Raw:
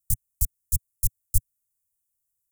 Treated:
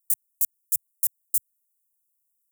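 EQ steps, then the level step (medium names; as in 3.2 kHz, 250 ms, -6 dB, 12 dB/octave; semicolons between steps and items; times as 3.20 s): differentiator; 0.0 dB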